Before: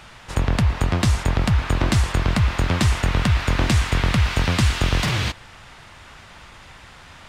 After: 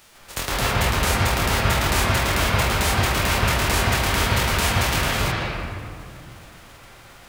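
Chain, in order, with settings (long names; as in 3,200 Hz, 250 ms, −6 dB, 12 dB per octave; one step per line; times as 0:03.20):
spectral envelope flattened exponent 0.3
convolution reverb RT60 2.2 s, pre-delay 117 ms, DRR −7.5 dB
level −8.5 dB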